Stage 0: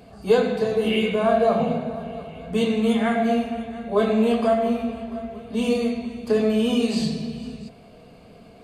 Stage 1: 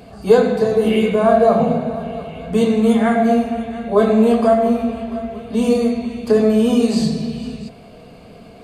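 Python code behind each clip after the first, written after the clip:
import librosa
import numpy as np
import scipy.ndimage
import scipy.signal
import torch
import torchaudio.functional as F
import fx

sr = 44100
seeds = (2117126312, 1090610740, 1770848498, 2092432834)

y = fx.dynamic_eq(x, sr, hz=2900.0, q=1.3, threshold_db=-46.0, ratio=4.0, max_db=-8)
y = F.gain(torch.from_numpy(y), 6.5).numpy()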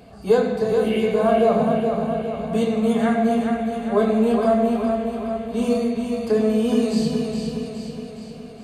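y = fx.echo_feedback(x, sr, ms=416, feedback_pct=56, wet_db=-6)
y = F.gain(torch.from_numpy(y), -5.5).numpy()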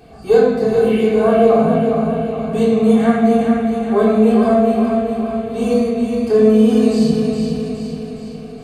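y = fx.room_shoebox(x, sr, seeds[0], volume_m3=940.0, walls='furnished', distance_m=3.6)
y = F.gain(torch.from_numpy(y), -1.0).numpy()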